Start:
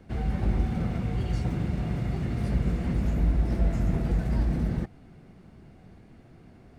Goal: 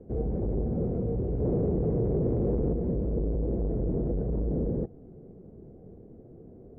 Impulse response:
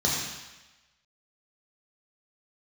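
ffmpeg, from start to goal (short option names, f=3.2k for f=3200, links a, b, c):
-filter_complex "[0:a]asettb=1/sr,asplit=3[a][b][c];[a]atrim=end=1.404[d];[b]atrim=start=1.4:end=2.73,asetpts=PTS-STARTPTS,afade=t=in:d=0.004:c=qsin,afade=t=out:st=1.326:d=0.004:c=qsin,acontrast=83[e];[c]atrim=start=2.726[f];[d][e]acrossfade=d=0.004:c1=hsin:c2=qsin[g];[g][f]acrossfade=d=0.004:c1=qsin:c2=hsin,volume=27dB,asoftclip=hard,volume=-27dB,lowpass=f=460:t=q:w=3.7"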